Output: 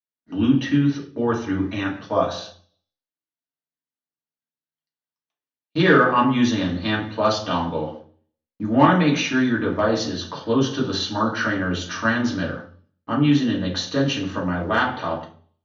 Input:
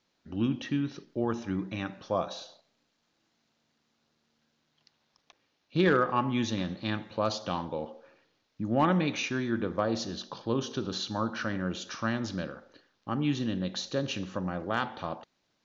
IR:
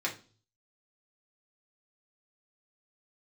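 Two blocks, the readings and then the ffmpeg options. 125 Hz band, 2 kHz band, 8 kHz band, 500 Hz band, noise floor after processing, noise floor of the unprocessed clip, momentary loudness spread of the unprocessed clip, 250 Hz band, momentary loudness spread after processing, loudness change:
+9.0 dB, +12.0 dB, no reading, +8.5 dB, under -85 dBFS, -76 dBFS, 12 LU, +10.5 dB, 12 LU, +10.0 dB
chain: -filter_complex "[0:a]agate=range=0.0141:threshold=0.00447:ratio=16:detection=peak[s0];[1:a]atrim=start_sample=2205,asetrate=36603,aresample=44100[s1];[s0][s1]afir=irnorm=-1:irlink=0,volume=1.5"

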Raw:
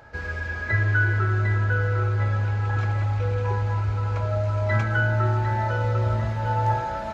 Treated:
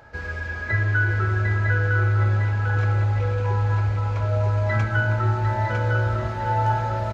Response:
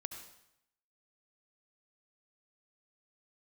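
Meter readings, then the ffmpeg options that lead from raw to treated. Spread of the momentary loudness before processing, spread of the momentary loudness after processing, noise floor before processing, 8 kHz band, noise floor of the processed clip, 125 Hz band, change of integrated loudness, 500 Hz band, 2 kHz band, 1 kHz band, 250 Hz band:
4 LU, 4 LU, -31 dBFS, no reading, -31 dBFS, +1.5 dB, +1.5 dB, +0.5 dB, +1.5 dB, +1.0 dB, +1.0 dB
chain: -af "aecho=1:1:954:0.562"

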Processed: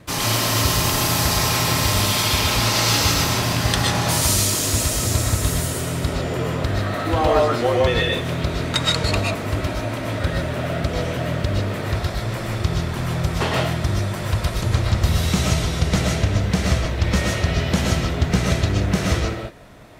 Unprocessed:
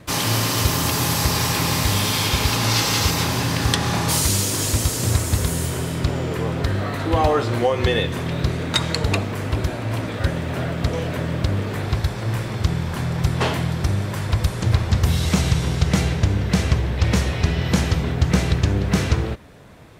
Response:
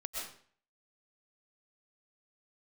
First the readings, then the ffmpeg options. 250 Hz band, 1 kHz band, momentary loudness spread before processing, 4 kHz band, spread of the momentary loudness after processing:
-0.5 dB, +1.5 dB, 6 LU, +2.0 dB, 7 LU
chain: -filter_complex "[1:a]atrim=start_sample=2205,afade=t=out:st=0.21:d=0.01,atrim=end_sample=9702[s0];[0:a][s0]afir=irnorm=-1:irlink=0,volume=1.26"

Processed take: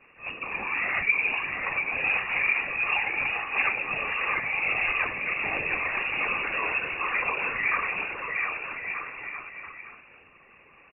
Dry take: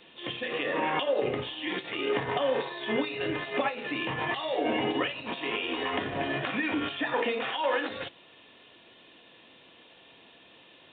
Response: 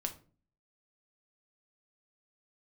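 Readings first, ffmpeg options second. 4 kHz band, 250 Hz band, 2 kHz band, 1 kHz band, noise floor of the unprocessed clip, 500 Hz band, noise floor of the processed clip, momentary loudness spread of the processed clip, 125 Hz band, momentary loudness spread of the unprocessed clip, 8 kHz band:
-6.0 dB, -12.0 dB, +9.0 dB, +0.5 dB, -56 dBFS, -10.0 dB, -55 dBFS, 11 LU, -5.5 dB, 5 LU, no reading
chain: -filter_complex "[0:a]aecho=1:1:700|1225|1619|1914|2136:0.631|0.398|0.251|0.158|0.1,asplit=2[s0][s1];[1:a]atrim=start_sample=2205[s2];[s1][s2]afir=irnorm=-1:irlink=0,volume=1.19[s3];[s0][s3]amix=inputs=2:normalize=0,afftfilt=real='hypot(re,im)*cos(2*PI*random(0))':imag='hypot(re,im)*sin(2*PI*random(1))':win_size=512:overlap=0.75,lowpass=f=2500:t=q:w=0.5098,lowpass=f=2500:t=q:w=0.6013,lowpass=f=2500:t=q:w=0.9,lowpass=f=2500:t=q:w=2.563,afreqshift=-2900"

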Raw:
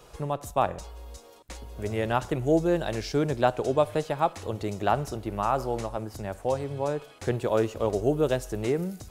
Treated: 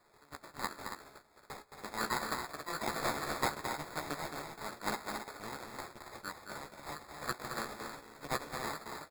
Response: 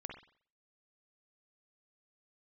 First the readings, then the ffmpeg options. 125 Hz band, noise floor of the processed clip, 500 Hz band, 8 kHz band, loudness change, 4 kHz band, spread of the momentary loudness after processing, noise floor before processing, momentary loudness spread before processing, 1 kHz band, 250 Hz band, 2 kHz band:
-19.0 dB, -65 dBFS, -18.0 dB, -1.5 dB, -12.0 dB, -2.0 dB, 14 LU, -51 dBFS, 11 LU, -9.0 dB, -16.0 dB, -2.0 dB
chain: -filter_complex "[0:a]afftfilt=real='real(if(lt(b,272),68*(eq(floor(b/68),0)*3+eq(floor(b/68),1)*2+eq(floor(b/68),2)*1+eq(floor(b/68),3)*0)+mod(b,68),b),0)':imag='imag(if(lt(b,272),68*(eq(floor(b/68),0)*3+eq(floor(b/68),1)*2+eq(floor(b/68),2)*1+eq(floor(b/68),3)*0)+mod(b,68),b),0)':win_size=2048:overlap=0.75,aresample=8000,aeval=exprs='abs(val(0))':c=same,aresample=44100,agate=range=0.316:threshold=0.002:ratio=16:detection=peak,highpass=330,lowpass=2300,asplit=2[s0][s1];[s1]adelay=14,volume=0.562[s2];[s0][s2]amix=inputs=2:normalize=0,acrusher=samples=15:mix=1:aa=0.000001,bandreject=f=1600:w=16,asplit=2[s3][s4];[s4]aecho=0:1:218.7|277:0.447|0.398[s5];[s3][s5]amix=inputs=2:normalize=0,volume=3.55"

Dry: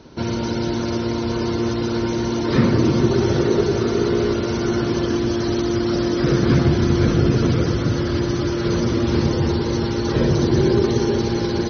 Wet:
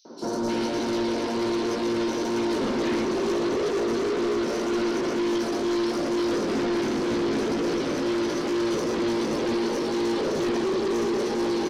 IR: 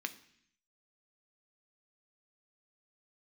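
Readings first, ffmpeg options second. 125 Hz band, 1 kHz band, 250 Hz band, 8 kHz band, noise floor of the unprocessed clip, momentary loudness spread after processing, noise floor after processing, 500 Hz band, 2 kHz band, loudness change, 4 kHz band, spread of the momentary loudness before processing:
-20.5 dB, -2.0 dB, -6.0 dB, no reading, -23 dBFS, 1 LU, -28 dBFS, -4.0 dB, -3.5 dB, -6.0 dB, -4.5 dB, 6 LU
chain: -filter_complex "[0:a]highpass=f=250:w=0.5412,highpass=f=250:w=1.3066,asplit=2[s0][s1];[s1]alimiter=limit=0.178:level=0:latency=1:release=134,volume=1[s2];[s0][s2]amix=inputs=2:normalize=0,flanger=delay=17:depth=2.1:speed=2.1,asoftclip=type=tanh:threshold=0.0631,acrossover=split=1400|4700[s3][s4][s5];[s3]adelay=50[s6];[s4]adelay=310[s7];[s6][s7][s5]amix=inputs=3:normalize=0,volume=1.19"

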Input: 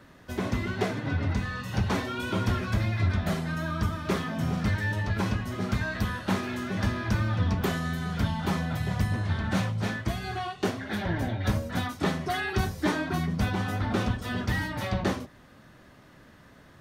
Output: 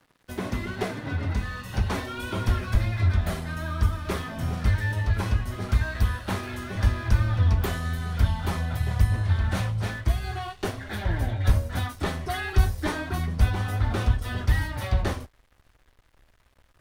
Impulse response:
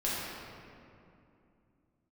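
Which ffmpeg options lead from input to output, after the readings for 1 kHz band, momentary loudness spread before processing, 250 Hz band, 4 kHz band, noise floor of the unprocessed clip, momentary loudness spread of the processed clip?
-1.0 dB, 4 LU, -4.0 dB, -0.5 dB, -54 dBFS, 7 LU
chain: -af "aexciter=amount=1.6:drive=6:freq=9000,aeval=exprs='sgn(val(0))*max(abs(val(0))-0.00299,0)':c=same,asubboost=boost=11:cutoff=54"

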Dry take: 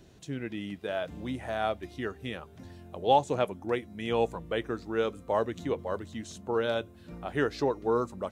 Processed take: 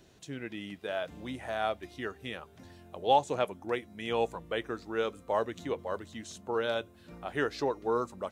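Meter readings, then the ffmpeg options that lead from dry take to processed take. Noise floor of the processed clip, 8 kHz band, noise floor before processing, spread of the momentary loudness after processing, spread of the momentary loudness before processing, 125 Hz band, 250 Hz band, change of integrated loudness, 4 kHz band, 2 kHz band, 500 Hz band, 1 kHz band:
-57 dBFS, no reading, -53 dBFS, 13 LU, 12 LU, -6.0 dB, -4.5 dB, -2.0 dB, 0.0 dB, -0.5 dB, -2.5 dB, -1.0 dB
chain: -af "lowshelf=f=370:g=-7"

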